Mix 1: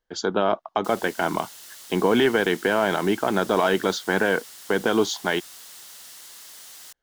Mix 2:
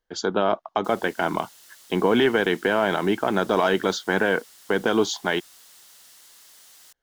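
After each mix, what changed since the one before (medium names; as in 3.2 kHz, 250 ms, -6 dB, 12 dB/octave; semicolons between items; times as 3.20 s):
background -7.0 dB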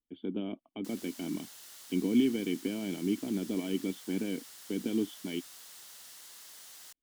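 speech: add cascade formant filter i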